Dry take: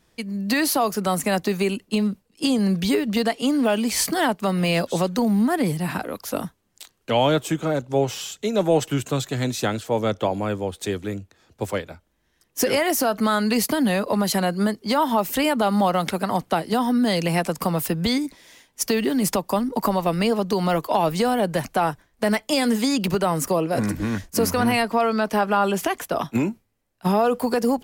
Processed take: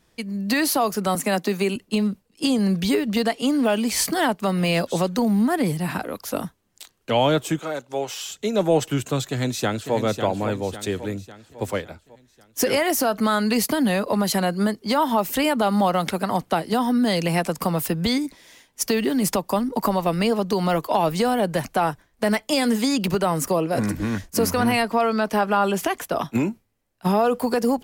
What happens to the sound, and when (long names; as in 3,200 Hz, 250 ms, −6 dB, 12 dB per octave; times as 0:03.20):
0:01.15–0:01.76: Butterworth high-pass 170 Hz
0:07.59–0:08.29: high-pass filter 780 Hz 6 dB per octave
0:09.28–0:09.95: delay throw 550 ms, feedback 50%, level −8 dB